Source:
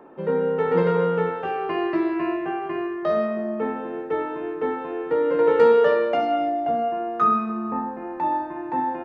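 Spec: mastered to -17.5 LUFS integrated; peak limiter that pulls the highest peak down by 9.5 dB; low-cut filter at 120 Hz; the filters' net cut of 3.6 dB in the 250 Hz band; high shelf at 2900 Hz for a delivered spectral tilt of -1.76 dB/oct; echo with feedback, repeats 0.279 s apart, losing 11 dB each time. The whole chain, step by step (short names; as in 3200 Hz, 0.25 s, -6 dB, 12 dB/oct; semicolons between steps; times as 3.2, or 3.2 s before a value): HPF 120 Hz; bell 250 Hz -5 dB; high shelf 2900 Hz -6.5 dB; limiter -18 dBFS; feedback echo 0.279 s, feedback 28%, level -11 dB; gain +9.5 dB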